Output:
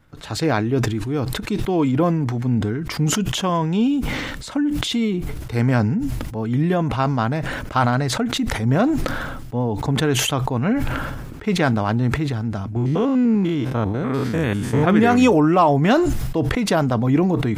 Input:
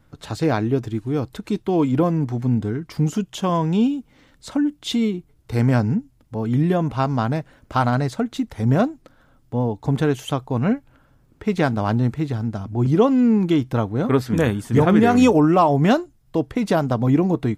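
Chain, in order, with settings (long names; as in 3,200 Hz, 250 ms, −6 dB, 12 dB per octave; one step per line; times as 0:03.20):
0:12.76–0:14.84: spectrum averaged block by block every 100 ms
parametric band 2,000 Hz +4 dB 1.8 octaves
level that may fall only so fast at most 29 dB per second
level −1 dB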